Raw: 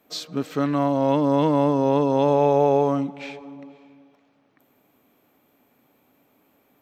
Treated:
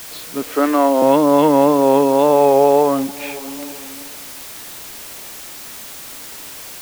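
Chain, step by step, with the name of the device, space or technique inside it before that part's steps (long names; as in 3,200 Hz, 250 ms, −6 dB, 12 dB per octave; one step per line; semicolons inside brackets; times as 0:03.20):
0:00.43–0:01.02: high-pass filter 260 Hz 24 dB per octave
dictaphone (band-pass filter 270–3,300 Hz; automatic gain control gain up to 15.5 dB; tape wow and flutter; white noise bed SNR 17 dB)
level −1 dB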